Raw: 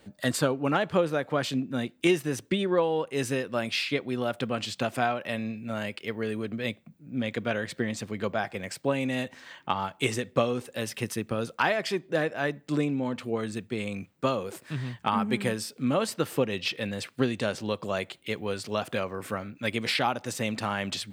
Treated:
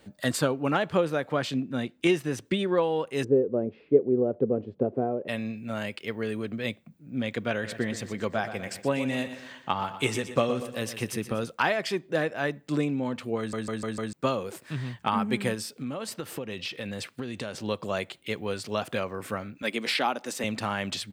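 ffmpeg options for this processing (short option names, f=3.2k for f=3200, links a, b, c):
-filter_complex "[0:a]asettb=1/sr,asplit=3[a][b][c];[a]atrim=end=1.384[d];[b]atrim=start=1.38:end=2.46,asetpts=PTS-STARTPTS,afade=t=in:d=0.004:c=qsin,afade=t=out:st=1.076:d=0.004:c=qsin,highshelf=f=7.8k:g=-7[e];[c]atrim=start=2.456[f];[d][e]acrossfade=d=0.004:c1=hsin:c2=qsin[g];[g][f]acrossfade=d=0.004:c1=qsin:c2=hsin,asplit=3[h][i][j];[h]afade=t=out:st=3.23:d=0.02[k];[i]lowpass=f=430:t=q:w=4.2,afade=t=in:st=3.23:d=0.02,afade=t=out:st=5.27:d=0.02[l];[j]afade=t=in:st=5.27:d=0.02[m];[k][l][m]amix=inputs=3:normalize=0,asplit=3[n][o][p];[n]afade=t=out:st=7.63:d=0.02[q];[o]aecho=1:1:121|242|363|484|605:0.266|0.12|0.0539|0.0242|0.0109,afade=t=in:st=7.63:d=0.02,afade=t=out:st=11.43:d=0.02[r];[p]afade=t=in:st=11.43:d=0.02[s];[q][r][s]amix=inputs=3:normalize=0,asettb=1/sr,asplit=3[t][u][v];[t]atrim=end=15.544[w];[u]atrim=start=15.54:end=17.64,asetpts=PTS-STARTPTS,afade=t=in:d=0.004:c=qsin,afade=t=out:st=2.096:d=0.004:c=qsin,acompressor=threshold=-30dB:ratio=6:attack=3.2:release=140:knee=1:detection=peak[x];[v]atrim=start=17.636[y];[w][x]acrossfade=d=0.004:c1=hsin:c2=qsin[z];[z][y]acrossfade=d=0.004:c1=qsin:c2=hsin,asettb=1/sr,asplit=3[aa][ab][ac];[aa]atrim=end=19.624[ad];[ab]atrim=start=19.62:end=20.44,asetpts=PTS-STARTPTS,afade=t=in:d=0.004:c=qsin,afade=t=out:st=0.816:d=0.004:c=qsin,highpass=f=200:w=0.5412,highpass=f=200:w=1.3066[ae];[ac]atrim=start=20.436[af];[ad][ae]acrossfade=d=0.004:c1=hsin:c2=qsin[ag];[ag][af]acrossfade=d=0.004:c1=qsin:c2=hsin,asplit=6[ah][ai][aj][ak][al][am];[ah]atrim=end=13.532[an];[ai]atrim=start=13.378:end=13.532[ao];[aj]atrim=start=13.378:end=13.532[ap];[ak]atrim=start=13.378:end=13.532[aq];[al]atrim=start=13.378:end=13.532[ar];[am]atrim=start=14.128[as];[an][ao]acrossfade=d=0.004:c1=hsin:c2=hsin[at];[at][ap]acrossfade=d=0.004:c1=hsin:c2=hsin[au];[au][aq]acrossfade=d=0.004:c1=hsin:c2=hsin[av];[av][ar]acrossfade=d=0.004:c1=hsin:c2=hsin[aw];[aw][as]acrossfade=d=0.004:c1=hsin:c2=hsin"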